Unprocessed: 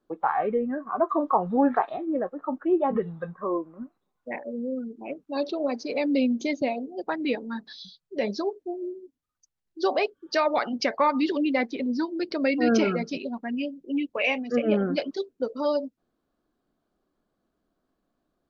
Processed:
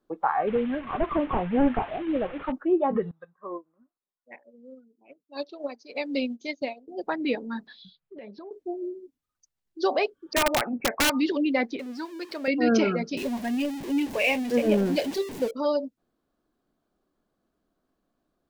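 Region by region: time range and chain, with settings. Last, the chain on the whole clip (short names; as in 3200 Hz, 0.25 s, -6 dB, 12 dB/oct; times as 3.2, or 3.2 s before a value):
0.47–2.52 delta modulation 16 kbps, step -34.5 dBFS + low shelf 74 Hz +10.5 dB
3.11–6.88 tilt +2 dB/oct + upward expander 2.5:1, over -37 dBFS
7.67–8.51 LPF 3200 Hz 24 dB/oct + compressor 4:1, threshold -42 dBFS
10.33–11.1 brick-wall FIR low-pass 2700 Hz + wrapped overs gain 15.5 dB
11.79–12.48 zero-crossing step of -38 dBFS + HPF 1200 Hz 6 dB/oct + tilt -1.5 dB/oct
13.17–15.51 zero-crossing step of -31 dBFS + bell 1300 Hz -13 dB 0.26 oct
whole clip: dry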